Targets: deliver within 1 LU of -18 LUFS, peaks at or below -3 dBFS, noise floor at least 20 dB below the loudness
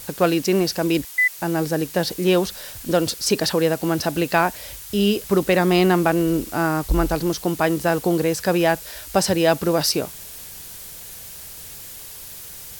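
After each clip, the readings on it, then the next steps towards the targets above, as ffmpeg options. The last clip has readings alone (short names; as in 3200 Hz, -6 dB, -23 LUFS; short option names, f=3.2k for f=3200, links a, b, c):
noise floor -38 dBFS; noise floor target -41 dBFS; loudness -20.5 LUFS; peak -4.0 dBFS; loudness target -18.0 LUFS
-> -af "afftdn=nr=6:nf=-38"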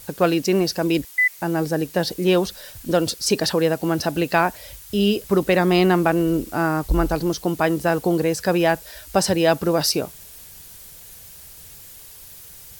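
noise floor -43 dBFS; loudness -20.5 LUFS; peak -4.0 dBFS; loudness target -18.0 LUFS
-> -af "volume=2.5dB,alimiter=limit=-3dB:level=0:latency=1"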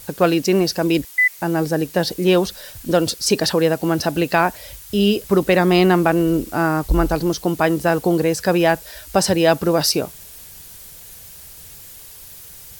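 loudness -18.0 LUFS; peak -3.0 dBFS; noise floor -40 dBFS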